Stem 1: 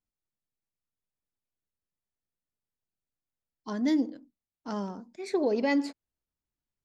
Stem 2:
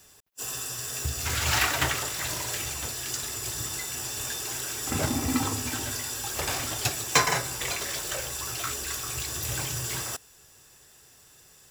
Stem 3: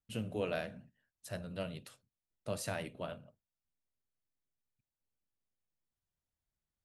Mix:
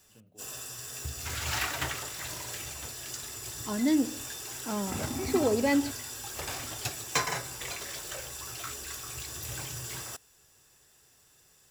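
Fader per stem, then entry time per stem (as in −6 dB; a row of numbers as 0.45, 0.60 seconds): +0.5, −7.0, −20.0 decibels; 0.00, 0.00, 0.00 seconds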